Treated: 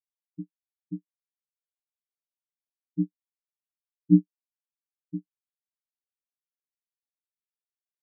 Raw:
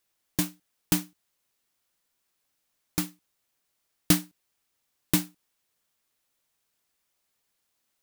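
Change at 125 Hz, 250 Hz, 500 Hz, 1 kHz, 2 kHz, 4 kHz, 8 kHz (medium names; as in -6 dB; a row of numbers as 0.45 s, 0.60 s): +2.5 dB, +4.0 dB, no reading, under -40 dB, under -40 dB, under -40 dB, under -40 dB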